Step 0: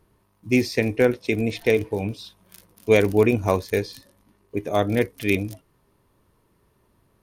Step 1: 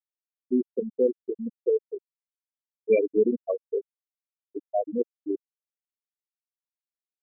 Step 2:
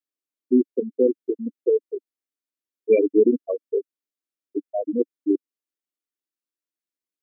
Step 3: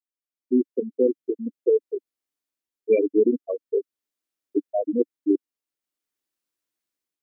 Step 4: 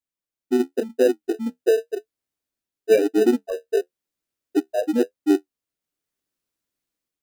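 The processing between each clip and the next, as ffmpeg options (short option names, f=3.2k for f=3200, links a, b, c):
-af "highpass=f=150:p=1,afftfilt=real='re*gte(hypot(re,im),0.501)':imag='im*gte(hypot(re,im),0.501)':win_size=1024:overlap=0.75,volume=-2.5dB"
-af "highpass=f=290:t=q:w=3.5,equalizer=f=830:w=4.5:g=-12"
-af "dynaudnorm=f=190:g=5:m=15dB,volume=-8dB"
-filter_complex "[0:a]flanger=delay=10:depth=4.2:regen=-45:speed=0.96:shape=triangular,asplit=2[a][b];[b]acrusher=samples=40:mix=1:aa=0.000001,volume=-11dB[c];[a][c]amix=inputs=2:normalize=0,volume=5dB"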